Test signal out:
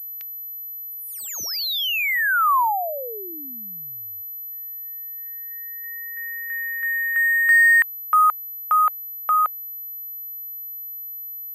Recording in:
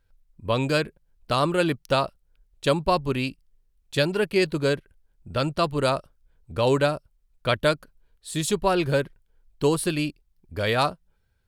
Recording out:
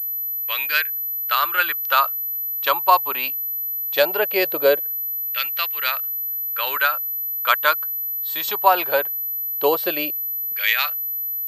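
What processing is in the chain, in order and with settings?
auto-filter high-pass saw down 0.19 Hz 490–2,200 Hz
switching amplifier with a slow clock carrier 12,000 Hz
level +4 dB

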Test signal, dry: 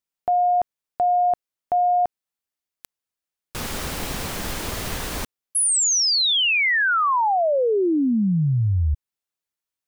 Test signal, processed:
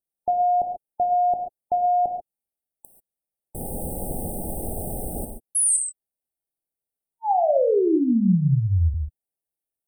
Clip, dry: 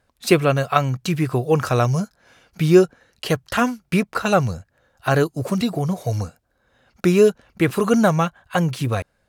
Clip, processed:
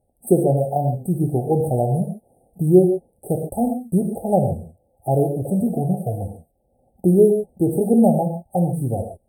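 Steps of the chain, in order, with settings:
linear-phase brick-wall band-stop 870–8,000 Hz
reverb whose tail is shaped and stops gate 160 ms flat, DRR 3.5 dB
level −1 dB

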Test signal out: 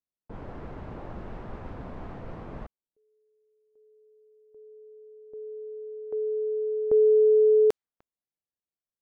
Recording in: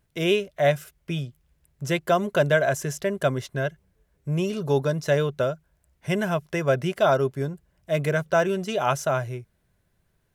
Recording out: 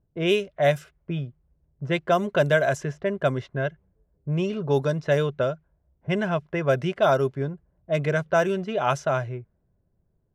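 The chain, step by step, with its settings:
low-pass that shuts in the quiet parts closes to 580 Hz, open at −16.5 dBFS

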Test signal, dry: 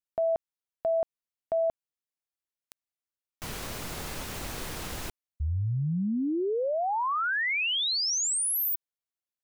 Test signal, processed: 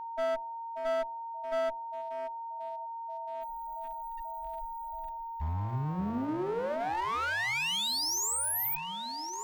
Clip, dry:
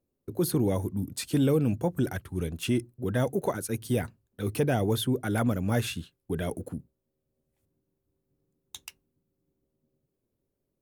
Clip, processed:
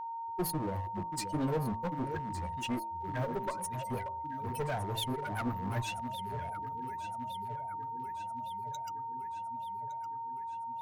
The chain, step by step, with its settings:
spectral dynamics exaggerated over time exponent 3
delay that swaps between a low-pass and a high-pass 581 ms, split 930 Hz, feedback 78%, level −12 dB
in parallel at −4 dB: soft clipping −34.5 dBFS
on the sum: steady tone 920 Hz −35 dBFS
asymmetric clip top −32 dBFS
hum removal 55.89 Hz, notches 20
level −2 dB

